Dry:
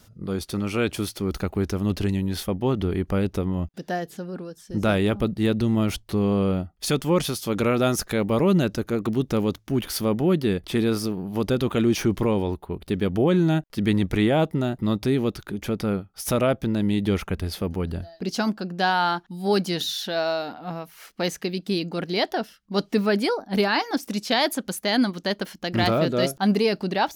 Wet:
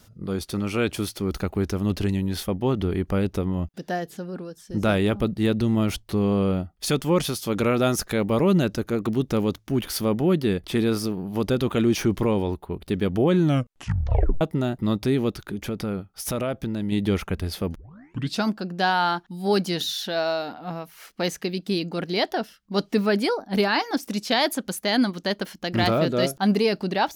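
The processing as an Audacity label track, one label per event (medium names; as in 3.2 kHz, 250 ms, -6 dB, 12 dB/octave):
13.420000	13.420000	tape stop 0.99 s
15.470000	16.920000	compression 3:1, threshold -24 dBFS
17.750000	17.750000	tape start 0.68 s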